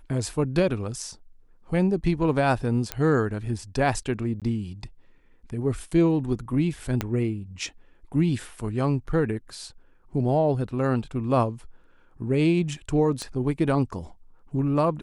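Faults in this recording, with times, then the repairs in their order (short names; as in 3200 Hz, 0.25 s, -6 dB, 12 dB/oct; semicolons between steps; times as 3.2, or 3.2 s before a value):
2.92 pop -10 dBFS
4.4–4.42 gap 17 ms
7.01 pop -11 dBFS
13.22 pop -20 dBFS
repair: de-click; interpolate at 4.4, 17 ms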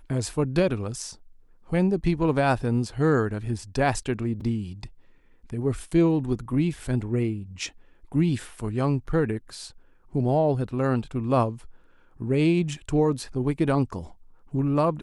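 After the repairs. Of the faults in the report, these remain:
7.01 pop
13.22 pop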